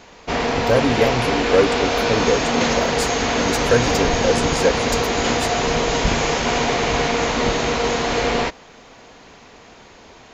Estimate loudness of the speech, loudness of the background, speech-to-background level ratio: -23.0 LUFS, -19.5 LUFS, -3.5 dB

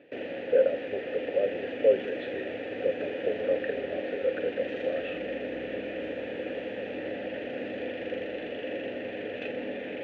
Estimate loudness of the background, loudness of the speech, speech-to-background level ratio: -35.5 LUFS, -30.5 LUFS, 5.0 dB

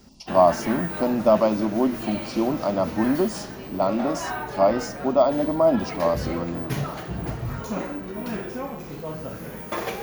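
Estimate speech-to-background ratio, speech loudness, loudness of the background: 9.0 dB, -23.0 LUFS, -32.0 LUFS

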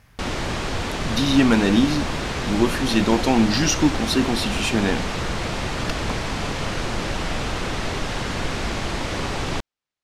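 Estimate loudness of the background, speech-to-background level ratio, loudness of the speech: -26.5 LUFS, 6.0 dB, -20.5 LUFS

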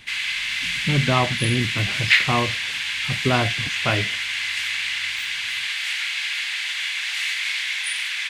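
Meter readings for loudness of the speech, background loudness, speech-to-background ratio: -24.5 LUFS, -22.5 LUFS, -2.0 dB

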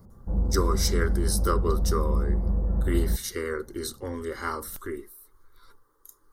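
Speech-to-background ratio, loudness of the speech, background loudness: -3.0 dB, -31.0 LUFS, -28.0 LUFS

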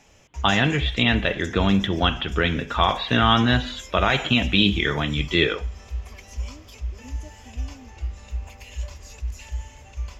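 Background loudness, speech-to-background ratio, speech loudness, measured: -35.0 LUFS, 14.0 dB, -21.0 LUFS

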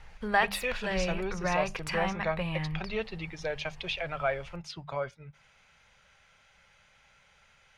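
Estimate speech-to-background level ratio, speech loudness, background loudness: -3.0 dB, -35.0 LUFS, -32.0 LUFS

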